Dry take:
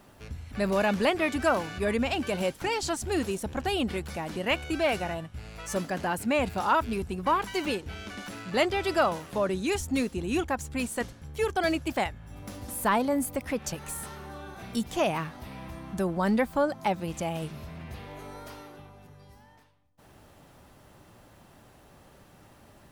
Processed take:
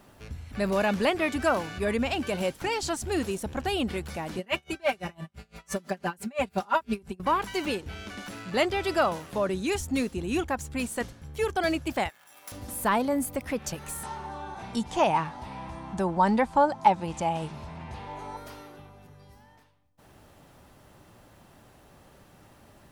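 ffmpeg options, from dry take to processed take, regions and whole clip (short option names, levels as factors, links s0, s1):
-filter_complex "[0:a]asettb=1/sr,asplit=3[s0][s1][s2];[s0]atrim=end=4.384[s3];[s1]atrim=start=4.38:end=7.2,asetpts=PTS-STARTPTS,afade=t=in:d=0.004:c=qsin,afade=t=out:st=2.816:d=0.004:c=qsin,highpass=56,aecho=1:1:5.1:0.92,atrim=end_sample=124362,aeval=exprs='val(0)*pow(10,-29*(0.5-0.5*cos(2*PI*5.9*n/s))/20)':c=same[s4];[s2]atrim=start=7.196[s5];[s3][s4]acrossfade=d=0.004:c1=hsin:c2=qsin[s6];[s6][s5]acrossfade=d=0.004:c1=qsin:c2=hsin,asettb=1/sr,asplit=3[s7][s8][s9];[s7]atrim=end=12.094[s10];[s8]atrim=start=12.09:end=12.52,asetpts=PTS-STARTPTS,afade=t=in:d=0.004:c=qsin,afade=t=out:st=0.426:d=0.004:c=qsin,aeval=exprs='val(0)+0.5*0.00224*sgn(val(0))':c=same,highpass=900,highshelf=f=9300:g=11.5[s11];[s9]atrim=start=12.516[s12];[s10][s11]acrossfade=d=0.004:c1=hsin:c2=qsin[s13];[s13][s12]acrossfade=d=0.004:c1=qsin:c2=hsin,asettb=1/sr,asplit=3[s14][s15][s16];[s14]atrim=end=14.034[s17];[s15]atrim=start=14.03:end=18.37,asetpts=PTS-STARTPTS,afade=t=in:d=0.004:c=qsin,afade=t=out:st=4.336:d=0.004:c=qsin,lowpass=f=9400:w=0.5412,lowpass=f=9400:w=1.3066,equalizer=f=890:w=4.2:g=13.5[s18];[s16]atrim=start=18.366[s19];[s17][s18]acrossfade=d=0.004:c1=hsin:c2=qsin[s20];[s20][s19]acrossfade=d=0.004:c1=qsin:c2=hsin"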